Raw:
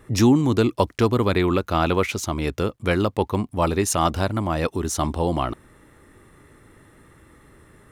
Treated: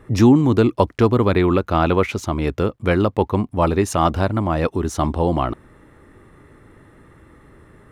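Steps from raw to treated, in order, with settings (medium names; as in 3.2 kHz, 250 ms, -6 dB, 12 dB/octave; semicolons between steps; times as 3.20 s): treble shelf 3.4 kHz -11.5 dB; trim +4 dB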